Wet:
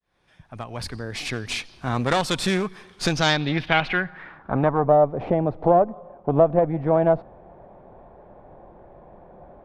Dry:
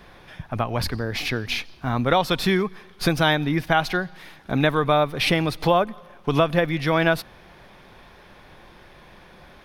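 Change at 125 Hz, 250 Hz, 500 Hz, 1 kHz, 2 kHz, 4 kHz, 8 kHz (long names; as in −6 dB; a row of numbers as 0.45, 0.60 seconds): −1.5, −1.0, +2.5, 0.0, −2.5, −2.0, +2.5 decibels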